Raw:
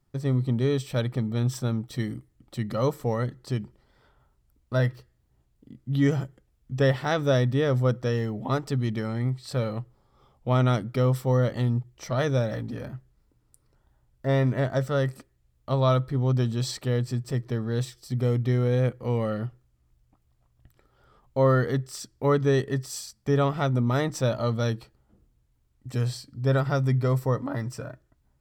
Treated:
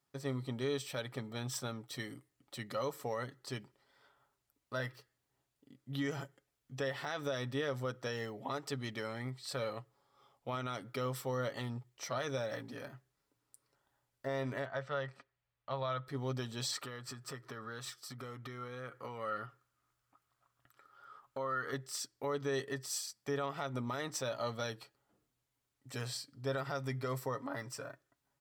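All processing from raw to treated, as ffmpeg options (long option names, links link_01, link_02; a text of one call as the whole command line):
ffmpeg -i in.wav -filter_complex "[0:a]asettb=1/sr,asplit=3[link_01][link_02][link_03];[link_01]atrim=end=14.654[link_04];[link_02]atrim=start=14.65:end=16.07,asetpts=PTS-STARTPTS,afade=type=in:duration=0.004:curve=qsin,afade=type=out:start_time=1.416:duration=0.004:curve=qsin,lowpass=2900,equalizer=frequency=310:width=1.2:gain=-9.5[link_05];[link_03]atrim=start=16.066[link_06];[link_04][link_05]acrossfade=duration=0.004:curve1=hsin:curve2=qsin[link_07];[link_07][link_06]acrossfade=duration=0.004:curve1=qsin:curve2=hsin,asettb=1/sr,asplit=3[link_08][link_09][link_10];[link_08]atrim=end=16.724[link_11];[link_09]atrim=start=16.72:end=21.73,asetpts=PTS-STARTPTS,afade=type=in:duration=0.004:curve=qsin,afade=type=out:start_time=5.006:duration=0.004:curve=qsin,acompressor=threshold=-30dB:ratio=6:attack=3.2:release=140:knee=1:detection=peak,equalizer=frequency=1300:width=2.4:gain=12.5[link_12];[link_10]atrim=start=21.726[link_13];[link_11][link_12]acrossfade=duration=0.004:curve1=hsin:curve2=qsin[link_14];[link_14][link_13]acrossfade=duration=0.004:curve1=qsin:curve2=hsin,highpass=frequency=820:poles=1,aecho=1:1:7.2:0.35,alimiter=level_in=0.5dB:limit=-24dB:level=0:latency=1:release=123,volume=-0.5dB,volume=-2.5dB" out.wav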